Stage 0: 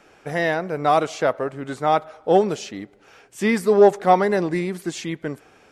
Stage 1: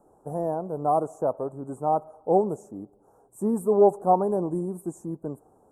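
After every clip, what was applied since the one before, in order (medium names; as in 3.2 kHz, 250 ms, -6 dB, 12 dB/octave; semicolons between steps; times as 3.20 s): elliptic band-stop 960–8600 Hz, stop band 50 dB; trim -4 dB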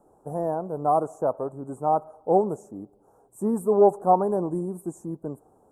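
dynamic bell 1.6 kHz, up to +4 dB, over -38 dBFS, Q 0.84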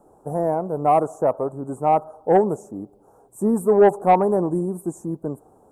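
saturation -11.5 dBFS, distortion -18 dB; trim +5.5 dB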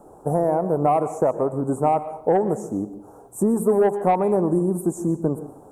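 compression 5:1, threshold -24 dBFS, peak gain reduction 12.5 dB; plate-style reverb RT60 0.55 s, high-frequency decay 0.85×, pre-delay 105 ms, DRR 13 dB; trim +7 dB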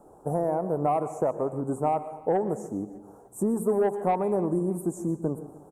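feedback delay 301 ms, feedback 40%, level -23 dB; trim -6 dB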